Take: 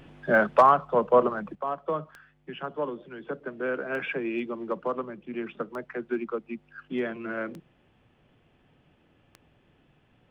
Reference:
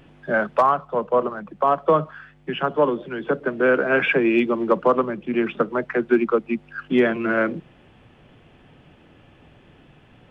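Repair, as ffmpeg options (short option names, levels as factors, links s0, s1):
-af "adeclick=t=4,asetnsamples=n=441:p=0,asendcmd='1.55 volume volume 12dB',volume=1"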